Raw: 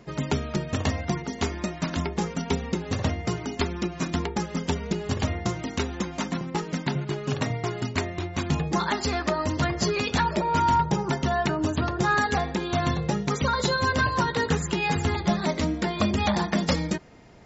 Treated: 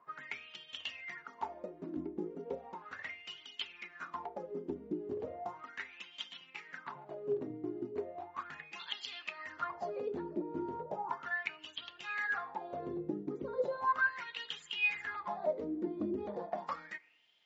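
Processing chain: wah-wah 0.36 Hz 310–3200 Hz, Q 10; FDN reverb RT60 0.69 s, high-frequency decay 0.85×, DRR 20 dB; trim +2.5 dB

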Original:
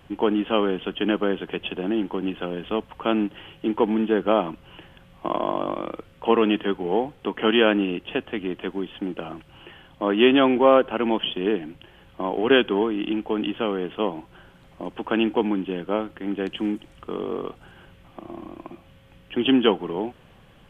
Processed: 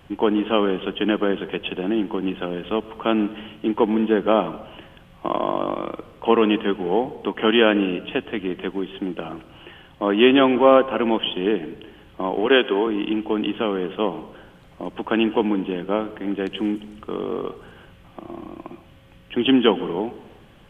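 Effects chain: 12.46–12.87 s: high-pass 280 Hz 12 dB/octave; reverberation RT60 1.0 s, pre-delay 104 ms, DRR 16.5 dB; trim +2 dB

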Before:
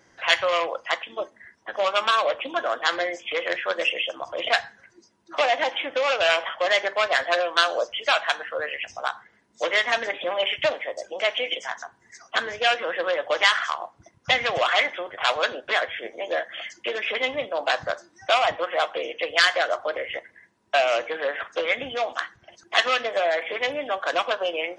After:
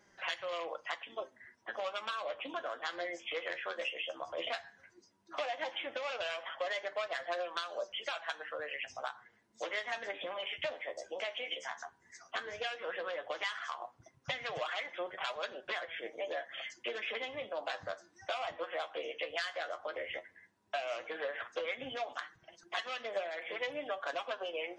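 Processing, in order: compression 6:1, threshold -27 dBFS, peak gain reduction 13.5 dB; flange 0.13 Hz, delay 4.8 ms, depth 8.6 ms, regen +41%; trim -4 dB

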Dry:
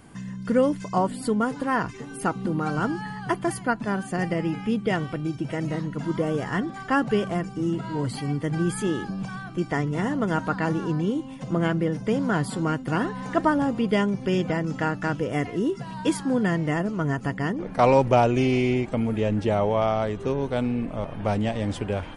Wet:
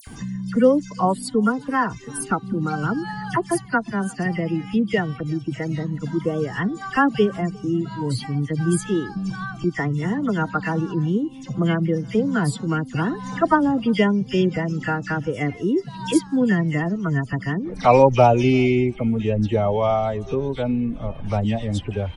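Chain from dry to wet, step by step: expander on every frequency bin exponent 1.5; upward compressor, threshold -27 dBFS; phase dispersion lows, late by 72 ms, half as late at 2.4 kHz; speakerphone echo 350 ms, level -27 dB; trim +6.5 dB

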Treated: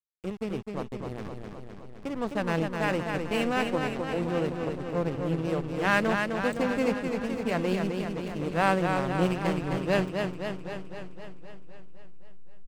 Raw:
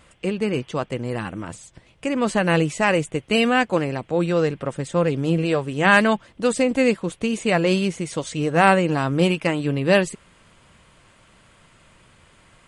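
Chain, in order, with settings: echo from a far wall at 130 m, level -13 dB; hysteresis with a dead band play -18.5 dBFS; modulated delay 258 ms, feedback 65%, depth 68 cents, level -5 dB; trim -8.5 dB

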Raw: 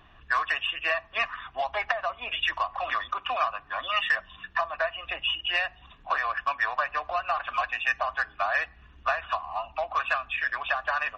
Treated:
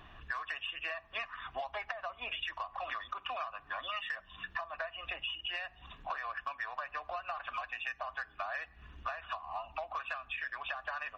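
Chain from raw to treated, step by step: compression 6:1, threshold -38 dBFS, peak gain reduction 16.5 dB; trim +1 dB

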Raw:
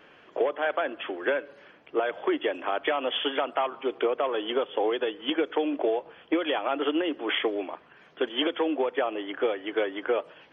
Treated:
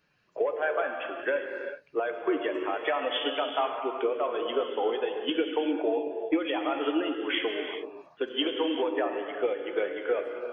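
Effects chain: expander on every frequency bin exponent 1.5; gated-style reverb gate 430 ms flat, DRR 3 dB

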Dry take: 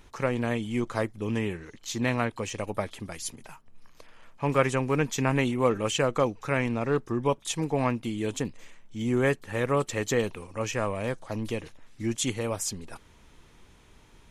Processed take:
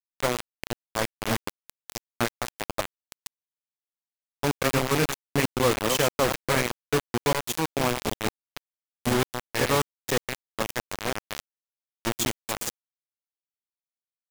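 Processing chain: chunks repeated in reverse 193 ms, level -5.5 dB; 6.75–7.67 s: de-hum 91.28 Hz, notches 9; trance gate "xxxx..x.xxxxx.x" 143 bpm; bit crusher 4-bit

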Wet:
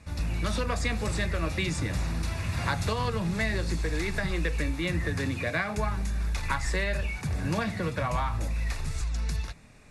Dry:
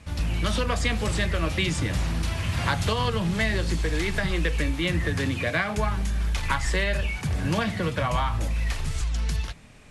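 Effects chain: band-stop 3.1 kHz, Q 5.1; trim -3.5 dB

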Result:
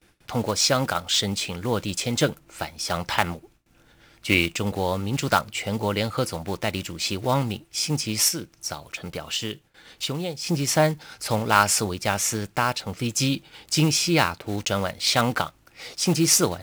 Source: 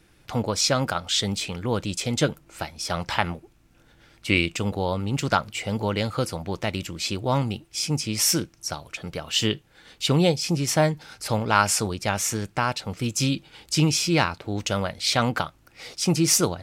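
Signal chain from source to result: block-companded coder 5-bit; 8.28–10.47 s: compression 5:1, threshold -27 dBFS, peak gain reduction 11.5 dB; bass shelf 230 Hz -3 dB; gate with hold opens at -49 dBFS; trim +1.5 dB

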